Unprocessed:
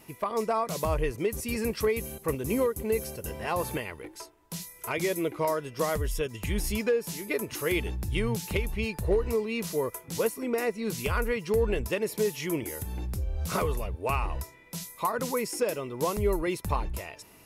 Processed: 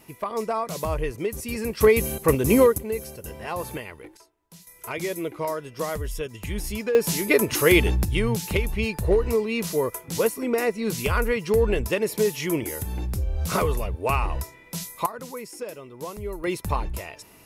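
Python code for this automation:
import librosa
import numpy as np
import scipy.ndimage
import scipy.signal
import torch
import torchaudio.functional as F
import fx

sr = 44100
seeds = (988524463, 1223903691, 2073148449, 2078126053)

y = fx.gain(x, sr, db=fx.steps((0.0, 1.0), (1.81, 10.0), (2.78, -1.0), (4.17, -11.0), (4.67, -0.5), (6.95, 11.0), (8.05, 5.0), (15.06, -6.5), (16.44, 3.0)))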